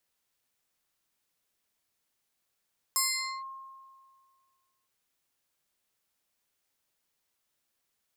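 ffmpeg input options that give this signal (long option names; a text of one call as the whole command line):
ffmpeg -f lavfi -i "aevalsrc='0.0708*pow(10,-3*t/1.91)*sin(2*PI*1070*t+3.7*clip(1-t/0.47,0,1)*sin(2*PI*2.94*1070*t))':duration=1.91:sample_rate=44100" out.wav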